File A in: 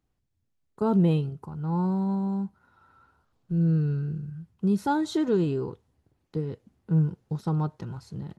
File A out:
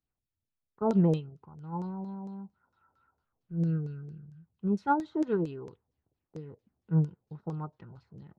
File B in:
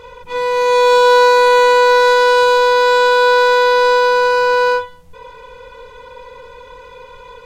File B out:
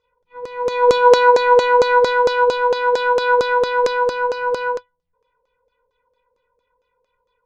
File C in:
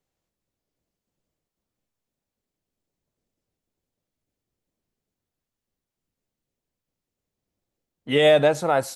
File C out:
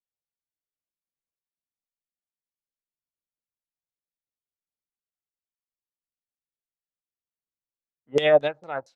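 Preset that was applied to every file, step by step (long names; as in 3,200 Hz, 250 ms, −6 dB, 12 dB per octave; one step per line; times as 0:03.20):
auto-filter low-pass saw down 4.4 Hz 480–6,400 Hz
expander for the loud parts 2.5 to 1, over −26 dBFS
level −1.5 dB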